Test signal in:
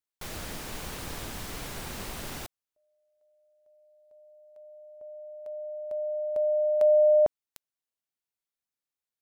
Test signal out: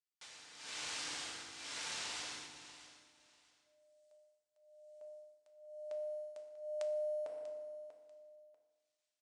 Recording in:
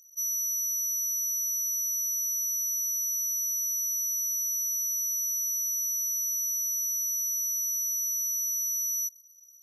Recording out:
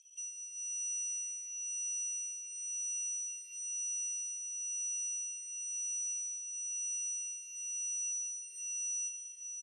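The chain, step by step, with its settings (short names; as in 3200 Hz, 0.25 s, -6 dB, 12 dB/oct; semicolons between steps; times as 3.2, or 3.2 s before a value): median filter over 5 samples; tremolo 1 Hz, depth 87%; steep low-pass 9100 Hz 48 dB/oct; on a send: feedback echo 0.641 s, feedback 22%, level -18 dB; on the sum: FDN reverb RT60 1.3 s, low-frequency decay 1.5×, high-frequency decay 0.7×, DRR 2 dB; AGC gain up to 12 dB; differentiator; compressor 3:1, threshold -41 dBFS; high shelf 7200 Hz -3.5 dB; gain +1.5 dB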